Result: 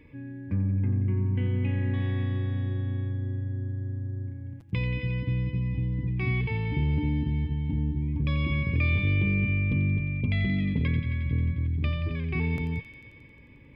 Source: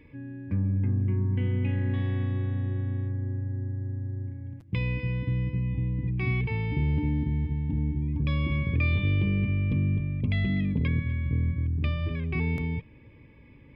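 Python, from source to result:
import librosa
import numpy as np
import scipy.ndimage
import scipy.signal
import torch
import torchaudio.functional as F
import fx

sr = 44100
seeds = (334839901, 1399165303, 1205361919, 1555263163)

y = fx.echo_wet_highpass(x, sr, ms=89, feedback_pct=78, hz=1900.0, wet_db=-8.0)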